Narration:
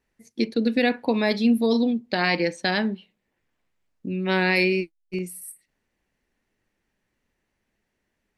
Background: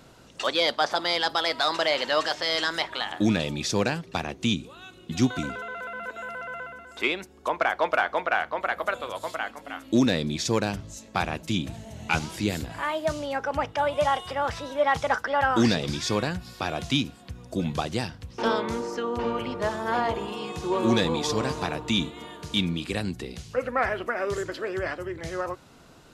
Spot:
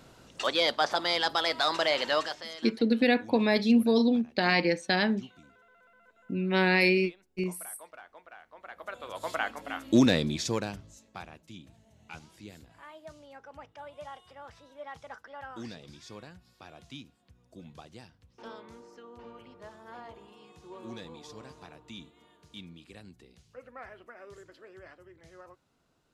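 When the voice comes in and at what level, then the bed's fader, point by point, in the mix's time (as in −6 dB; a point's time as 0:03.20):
2.25 s, −2.5 dB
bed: 0:02.14 −2.5 dB
0:02.78 −26 dB
0:08.42 −26 dB
0:09.35 0 dB
0:10.18 0 dB
0:11.43 −20.5 dB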